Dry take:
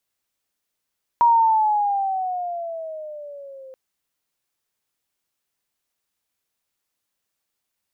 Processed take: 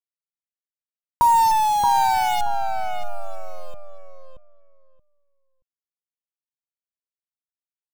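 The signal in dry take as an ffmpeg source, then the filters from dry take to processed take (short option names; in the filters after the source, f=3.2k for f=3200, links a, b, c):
-f lavfi -i "aevalsrc='pow(10,(-11-27*t/2.53)/20)*sin(2*PI*953*2.53/(-10.5*log(2)/12)*(exp(-10.5*log(2)/12*t/2.53)-1))':d=2.53:s=44100"
-filter_complex "[0:a]acrusher=bits=5:dc=4:mix=0:aa=0.000001,bass=f=250:g=14,treble=f=4k:g=-2,asplit=2[a][b];[b]adelay=627,lowpass=f=1.5k:p=1,volume=-3.5dB,asplit=2[c][d];[d]adelay=627,lowpass=f=1.5k:p=1,volume=0.18,asplit=2[e][f];[f]adelay=627,lowpass=f=1.5k:p=1,volume=0.18[g];[c][e][g]amix=inputs=3:normalize=0[h];[a][h]amix=inputs=2:normalize=0"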